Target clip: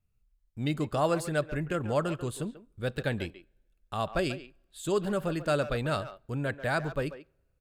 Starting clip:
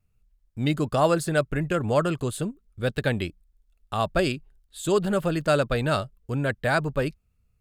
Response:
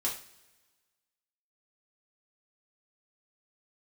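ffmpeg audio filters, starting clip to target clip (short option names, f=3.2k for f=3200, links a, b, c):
-filter_complex "[0:a]asplit=2[a][b];[b]adelay=140,highpass=300,lowpass=3.4k,asoftclip=type=hard:threshold=-17.5dB,volume=-12dB[c];[a][c]amix=inputs=2:normalize=0,asplit=2[d][e];[1:a]atrim=start_sample=2205,highshelf=f=4.3k:g=-7.5[f];[e][f]afir=irnorm=-1:irlink=0,volume=-23dB[g];[d][g]amix=inputs=2:normalize=0,volume=-6.5dB"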